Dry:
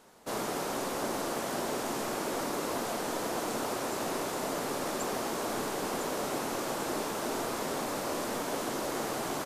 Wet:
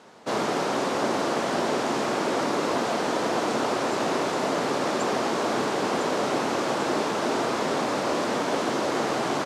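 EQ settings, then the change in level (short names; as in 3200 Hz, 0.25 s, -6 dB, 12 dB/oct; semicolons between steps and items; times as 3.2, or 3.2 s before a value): HPF 110 Hz 12 dB/oct; LPF 5300 Hz 12 dB/oct; +8.5 dB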